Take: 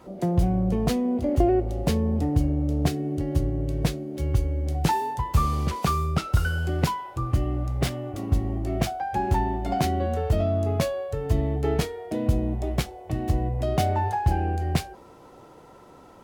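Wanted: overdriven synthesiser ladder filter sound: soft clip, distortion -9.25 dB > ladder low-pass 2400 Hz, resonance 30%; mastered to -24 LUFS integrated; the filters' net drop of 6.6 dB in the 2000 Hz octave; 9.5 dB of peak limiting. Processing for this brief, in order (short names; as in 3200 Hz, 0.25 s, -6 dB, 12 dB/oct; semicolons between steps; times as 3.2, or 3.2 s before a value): bell 2000 Hz -3 dB; limiter -18 dBFS; soft clip -29.5 dBFS; ladder low-pass 2400 Hz, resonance 30%; gain +16.5 dB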